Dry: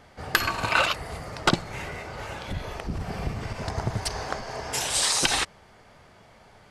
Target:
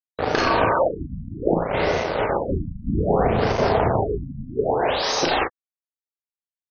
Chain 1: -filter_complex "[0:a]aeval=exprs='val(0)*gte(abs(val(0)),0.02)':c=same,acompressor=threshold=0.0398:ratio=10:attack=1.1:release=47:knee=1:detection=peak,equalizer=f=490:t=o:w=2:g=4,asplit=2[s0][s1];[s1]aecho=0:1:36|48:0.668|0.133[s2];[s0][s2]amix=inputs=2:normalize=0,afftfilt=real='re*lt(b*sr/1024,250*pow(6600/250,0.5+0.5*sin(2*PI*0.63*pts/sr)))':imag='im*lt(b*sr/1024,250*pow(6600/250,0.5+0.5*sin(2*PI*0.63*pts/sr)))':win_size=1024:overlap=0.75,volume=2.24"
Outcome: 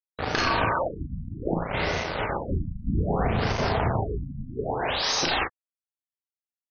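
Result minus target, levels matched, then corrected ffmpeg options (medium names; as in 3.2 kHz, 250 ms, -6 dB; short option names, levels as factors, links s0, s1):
500 Hz band -3.5 dB
-filter_complex "[0:a]aeval=exprs='val(0)*gte(abs(val(0)),0.02)':c=same,acompressor=threshold=0.0398:ratio=10:attack=1.1:release=47:knee=1:detection=peak,equalizer=f=490:t=o:w=2:g=13.5,asplit=2[s0][s1];[s1]aecho=0:1:36|48:0.668|0.133[s2];[s0][s2]amix=inputs=2:normalize=0,afftfilt=real='re*lt(b*sr/1024,250*pow(6600/250,0.5+0.5*sin(2*PI*0.63*pts/sr)))':imag='im*lt(b*sr/1024,250*pow(6600/250,0.5+0.5*sin(2*PI*0.63*pts/sr)))':win_size=1024:overlap=0.75,volume=2.24"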